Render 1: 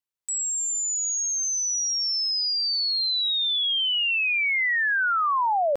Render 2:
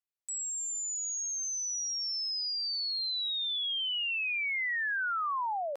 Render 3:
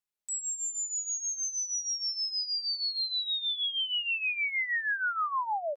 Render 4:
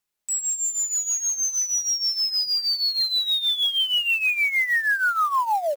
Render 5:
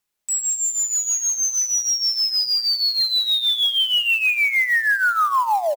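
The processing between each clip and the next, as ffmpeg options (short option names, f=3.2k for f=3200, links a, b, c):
-af "highpass=660,volume=-8.5dB"
-af "aecho=1:1:4.8:0.58"
-af "acrusher=bits=5:mode=log:mix=0:aa=0.000001,volume=8.5dB"
-af "aecho=1:1:84|168|252|336:0.158|0.0761|0.0365|0.0175,volume=3dB"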